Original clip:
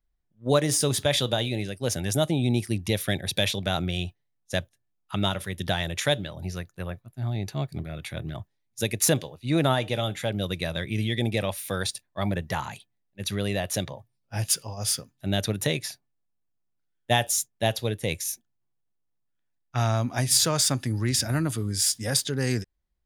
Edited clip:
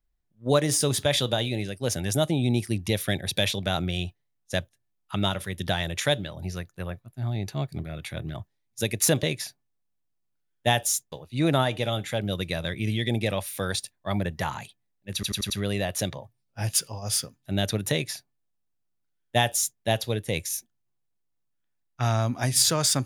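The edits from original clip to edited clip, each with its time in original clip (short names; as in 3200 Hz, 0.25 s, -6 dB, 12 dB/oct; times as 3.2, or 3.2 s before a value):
13.25 stutter 0.09 s, 5 plays
15.67–17.56 copy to 9.23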